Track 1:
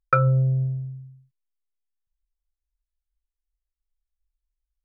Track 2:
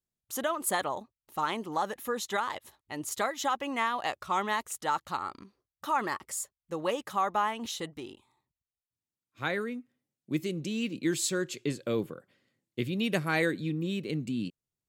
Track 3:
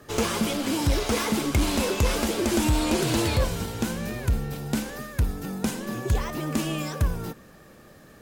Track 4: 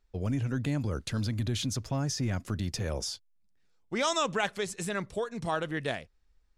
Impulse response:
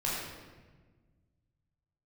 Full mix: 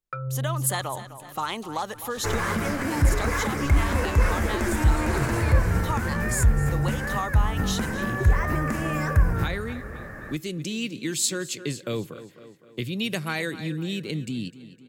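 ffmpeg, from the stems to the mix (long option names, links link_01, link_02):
-filter_complex "[0:a]volume=-12.5dB[link_01];[1:a]volume=-3dB,asplit=2[link_02][link_03];[link_03]volume=-7dB[link_04];[2:a]highshelf=frequency=2500:width_type=q:width=3:gain=-11.5,adelay=2150,volume=-1dB,asplit=3[link_05][link_06][link_07];[link_06]volume=-9.5dB[link_08];[link_07]volume=-11dB[link_09];[3:a]highshelf=frequency=3600:gain=12,aeval=exprs='clip(val(0),-1,0.0376)':channel_layout=same,adelay=550,volume=-19.5dB,asplit=2[link_10][link_11];[link_11]volume=-9dB[link_12];[link_01][link_02][link_05]amix=inputs=3:normalize=0,dynaudnorm=framelen=120:gausssize=7:maxgain=10.5dB,alimiter=limit=-11.5dB:level=0:latency=1:release=221,volume=0dB[link_13];[4:a]atrim=start_sample=2205[link_14];[link_08][link_14]afir=irnorm=-1:irlink=0[link_15];[link_04][link_09][link_12]amix=inputs=3:normalize=0,aecho=0:1:255|510|765|1020|1275|1530:1|0.41|0.168|0.0689|0.0283|0.0116[link_16];[link_10][link_13][link_15][link_16]amix=inputs=4:normalize=0,acrossover=split=140|3000[link_17][link_18][link_19];[link_18]acompressor=threshold=-47dB:ratio=1.5[link_20];[link_17][link_20][link_19]amix=inputs=3:normalize=0,equalizer=frequency=1100:width=0.46:gain=3.5"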